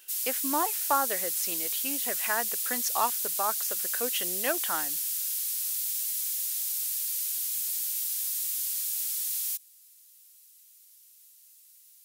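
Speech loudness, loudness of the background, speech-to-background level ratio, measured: -33.0 LUFS, -28.0 LUFS, -5.0 dB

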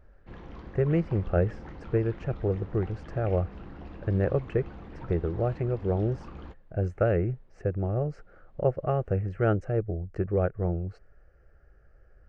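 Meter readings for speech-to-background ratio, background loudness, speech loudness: 15.5 dB, -45.0 LUFS, -29.5 LUFS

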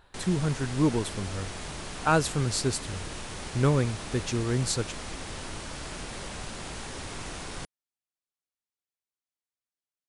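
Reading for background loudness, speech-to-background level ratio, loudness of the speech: -38.0 LUFS, 9.5 dB, -28.5 LUFS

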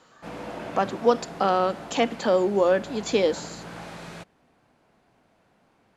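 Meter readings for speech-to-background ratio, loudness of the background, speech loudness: 15.5 dB, -39.5 LUFS, -24.0 LUFS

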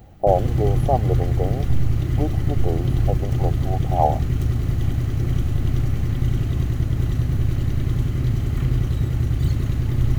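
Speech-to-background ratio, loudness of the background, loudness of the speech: -3.5 dB, -22.5 LUFS, -26.0 LUFS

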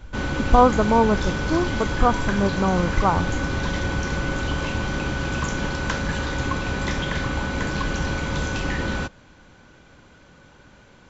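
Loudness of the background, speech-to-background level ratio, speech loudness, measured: -26.0 LUFS, 4.5 dB, -21.5 LUFS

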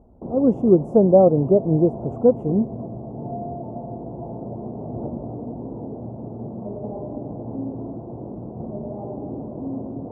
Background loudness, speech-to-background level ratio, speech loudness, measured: -32.5 LUFS, 14.5 dB, -18.0 LUFS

